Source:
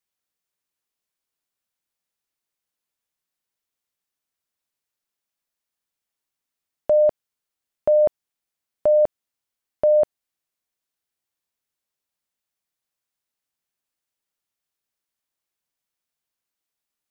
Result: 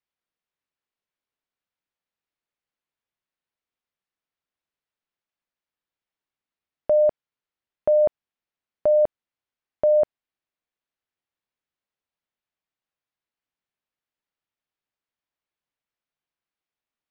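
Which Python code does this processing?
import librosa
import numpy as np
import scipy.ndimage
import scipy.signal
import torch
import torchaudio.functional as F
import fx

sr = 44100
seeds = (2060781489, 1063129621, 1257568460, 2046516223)

y = scipy.signal.sosfilt(scipy.signal.butter(2, 3300.0, 'lowpass', fs=sr, output='sos'), x)
y = y * 10.0 ** (-1.5 / 20.0)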